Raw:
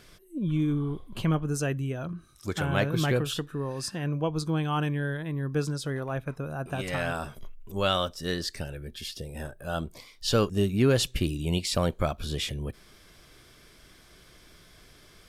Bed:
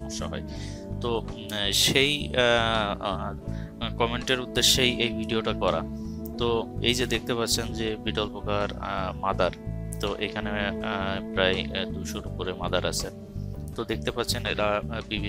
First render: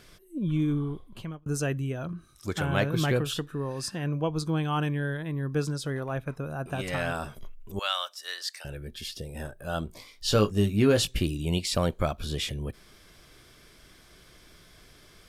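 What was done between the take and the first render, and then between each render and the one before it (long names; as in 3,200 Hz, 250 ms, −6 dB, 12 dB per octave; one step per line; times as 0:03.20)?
0:00.78–0:01.46: fade out
0:07.79–0:08.65: Bessel high-pass filter 1,100 Hz, order 4
0:09.87–0:11.22: double-tracking delay 19 ms −7 dB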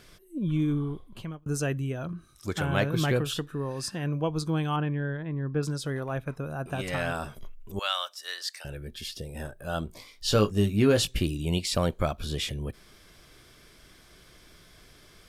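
0:04.76–0:05.63: high-frequency loss of the air 380 metres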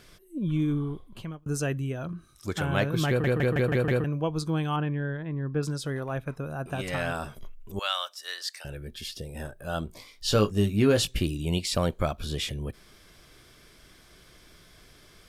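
0:03.08: stutter in place 0.16 s, 6 plays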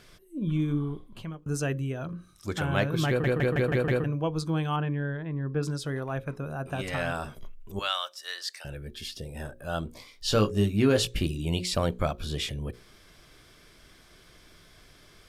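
high-shelf EQ 8,400 Hz −4 dB
mains-hum notches 60/120/180/240/300/360/420/480/540 Hz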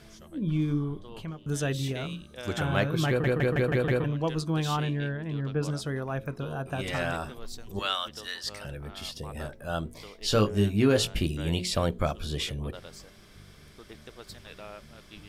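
mix in bed −19 dB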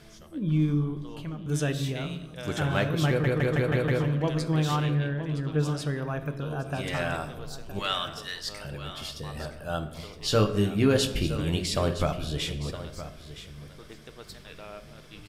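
single-tap delay 966 ms −13 dB
rectangular room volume 590 cubic metres, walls mixed, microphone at 0.45 metres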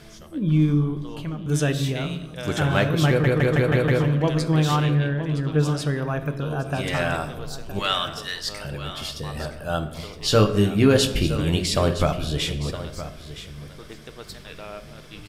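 level +5.5 dB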